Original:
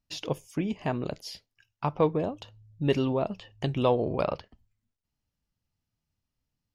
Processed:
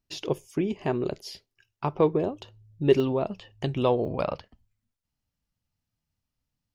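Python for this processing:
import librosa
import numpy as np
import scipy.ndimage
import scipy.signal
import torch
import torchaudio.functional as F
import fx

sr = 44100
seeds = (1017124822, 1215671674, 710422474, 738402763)

y = fx.peak_eq(x, sr, hz=380.0, db=fx.steps((0.0, 12.0), (3.0, 3.5), (4.05, -5.0)), octaves=0.28)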